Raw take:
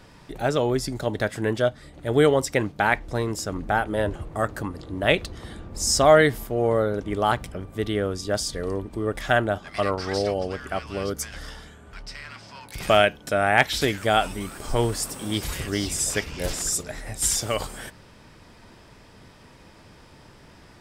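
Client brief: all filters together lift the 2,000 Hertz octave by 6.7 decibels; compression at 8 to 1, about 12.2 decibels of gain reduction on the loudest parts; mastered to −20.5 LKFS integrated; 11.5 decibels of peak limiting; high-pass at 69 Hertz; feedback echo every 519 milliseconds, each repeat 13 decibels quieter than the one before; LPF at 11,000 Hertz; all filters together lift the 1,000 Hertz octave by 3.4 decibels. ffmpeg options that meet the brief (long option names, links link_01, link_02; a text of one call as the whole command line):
ffmpeg -i in.wav -af "highpass=69,lowpass=11000,equalizer=frequency=1000:width_type=o:gain=3,equalizer=frequency=2000:width_type=o:gain=7.5,acompressor=threshold=-20dB:ratio=8,alimiter=limit=-17dB:level=0:latency=1,aecho=1:1:519|1038|1557:0.224|0.0493|0.0108,volume=9dB" out.wav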